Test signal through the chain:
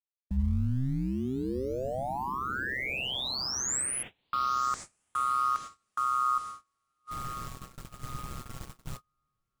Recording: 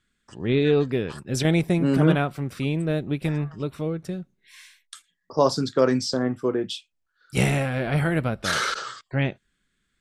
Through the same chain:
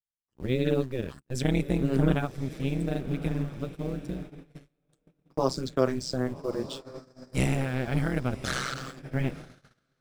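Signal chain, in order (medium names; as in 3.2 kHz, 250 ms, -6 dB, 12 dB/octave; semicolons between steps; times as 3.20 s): in parallel at -9 dB: word length cut 6-bit, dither none; on the sum: bass shelf 130 Hz +10.5 dB; AM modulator 130 Hz, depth 95%; on a send: echo that smears into a reverb 1153 ms, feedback 52%, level -13 dB; on the sum: dynamic bell 7.6 kHz, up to +4 dB, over -52 dBFS, Q 3.1; gate -32 dBFS, range -32 dB; trim -6.5 dB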